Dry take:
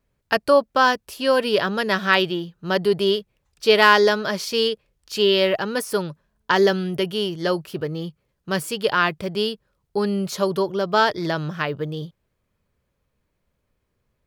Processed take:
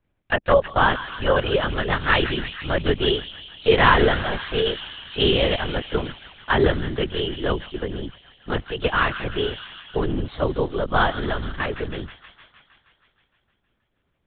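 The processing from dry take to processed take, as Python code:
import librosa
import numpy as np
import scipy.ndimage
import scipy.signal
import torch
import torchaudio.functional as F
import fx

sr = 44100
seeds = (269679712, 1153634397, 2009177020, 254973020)

y = fx.echo_wet_highpass(x, sr, ms=157, feedback_pct=69, hz=1700.0, wet_db=-8.0)
y = fx.lpc_vocoder(y, sr, seeds[0], excitation='whisper', order=10)
y = F.gain(torch.from_numpy(y), -1.0).numpy()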